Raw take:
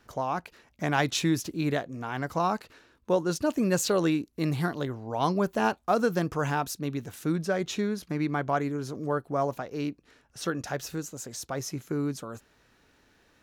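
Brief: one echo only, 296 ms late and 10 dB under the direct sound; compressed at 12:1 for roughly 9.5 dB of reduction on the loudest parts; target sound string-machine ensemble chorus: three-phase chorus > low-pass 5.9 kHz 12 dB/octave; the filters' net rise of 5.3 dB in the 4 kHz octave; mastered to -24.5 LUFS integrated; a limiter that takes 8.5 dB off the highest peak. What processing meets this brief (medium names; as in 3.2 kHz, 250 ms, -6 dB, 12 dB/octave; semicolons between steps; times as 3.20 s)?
peaking EQ 4 kHz +7.5 dB; compression 12:1, threshold -29 dBFS; peak limiter -27 dBFS; delay 296 ms -10 dB; three-phase chorus; low-pass 5.9 kHz 12 dB/octave; trim +16 dB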